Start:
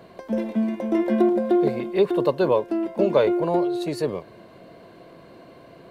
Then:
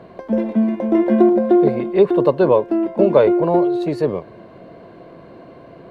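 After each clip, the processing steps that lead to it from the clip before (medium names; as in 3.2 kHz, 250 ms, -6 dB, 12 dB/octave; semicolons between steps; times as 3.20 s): low-pass 1.5 kHz 6 dB/octave; trim +6.5 dB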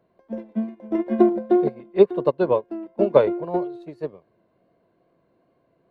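wow and flutter 28 cents; upward expansion 2.5:1, over -24 dBFS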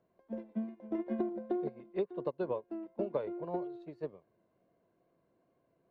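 compression 6:1, threshold -22 dBFS, peak gain reduction 13.5 dB; distance through air 68 m; trim -9 dB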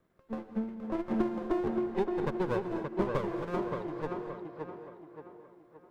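comb filter that takes the minimum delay 0.55 ms; on a send: tape echo 573 ms, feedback 47%, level -3 dB, low-pass 2.7 kHz; on the sum: gated-style reverb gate 270 ms rising, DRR 9 dB; trim +4 dB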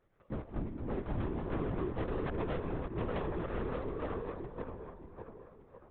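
hard clipper -32.5 dBFS, distortion -8 dB; vibrato 0.57 Hz 85 cents; LPC vocoder at 8 kHz whisper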